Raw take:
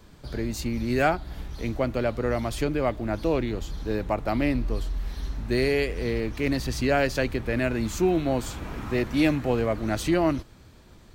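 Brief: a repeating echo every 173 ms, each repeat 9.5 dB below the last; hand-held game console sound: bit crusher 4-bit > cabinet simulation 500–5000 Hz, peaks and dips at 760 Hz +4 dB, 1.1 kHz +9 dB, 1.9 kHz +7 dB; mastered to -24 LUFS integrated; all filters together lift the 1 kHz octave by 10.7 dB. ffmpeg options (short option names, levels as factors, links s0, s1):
-af "equalizer=f=1000:t=o:g=8.5,aecho=1:1:173|346|519|692:0.335|0.111|0.0365|0.012,acrusher=bits=3:mix=0:aa=0.000001,highpass=500,equalizer=f=760:t=q:w=4:g=4,equalizer=f=1100:t=q:w=4:g=9,equalizer=f=1900:t=q:w=4:g=7,lowpass=f=5000:w=0.5412,lowpass=f=5000:w=1.3066,volume=0.841"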